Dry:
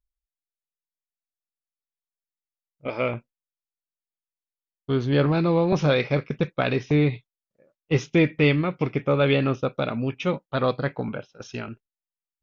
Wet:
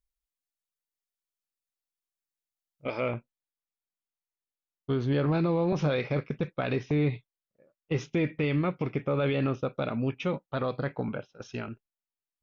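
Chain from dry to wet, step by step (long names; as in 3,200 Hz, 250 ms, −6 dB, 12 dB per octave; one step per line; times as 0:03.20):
high-shelf EQ 3,200 Hz +4 dB, from 0:03.00 −5.5 dB
brickwall limiter −16.5 dBFS, peak gain reduction 8 dB
level −2.5 dB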